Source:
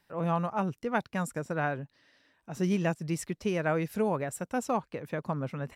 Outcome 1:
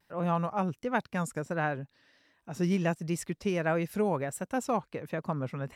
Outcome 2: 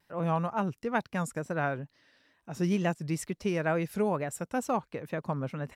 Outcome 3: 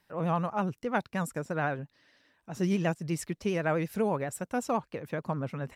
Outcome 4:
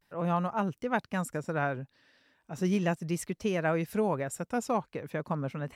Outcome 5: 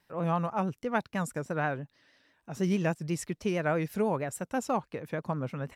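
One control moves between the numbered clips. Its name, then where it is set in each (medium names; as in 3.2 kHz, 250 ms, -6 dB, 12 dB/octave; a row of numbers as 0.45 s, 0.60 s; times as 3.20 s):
vibrato, rate: 1.4 Hz, 2.2 Hz, 12 Hz, 0.38 Hz, 6.2 Hz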